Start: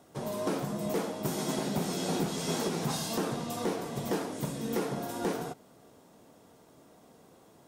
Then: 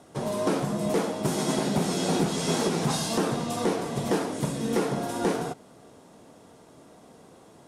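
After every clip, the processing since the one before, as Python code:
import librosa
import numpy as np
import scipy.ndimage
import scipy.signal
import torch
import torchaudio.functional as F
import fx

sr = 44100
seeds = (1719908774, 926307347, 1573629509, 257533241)

y = scipy.signal.sosfilt(scipy.signal.cheby1(3, 1.0, 11000.0, 'lowpass', fs=sr, output='sos'), x)
y = F.gain(torch.from_numpy(y), 6.0).numpy()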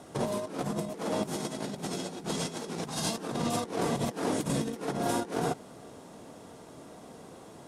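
y = fx.over_compress(x, sr, threshold_db=-31.0, ratio=-0.5)
y = F.gain(torch.from_numpy(y), -1.0).numpy()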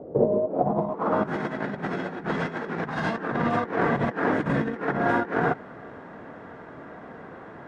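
y = fx.filter_sweep_lowpass(x, sr, from_hz=500.0, to_hz=1700.0, start_s=0.36, end_s=1.35, q=3.6)
y = F.gain(torch.from_numpy(y), 5.0).numpy()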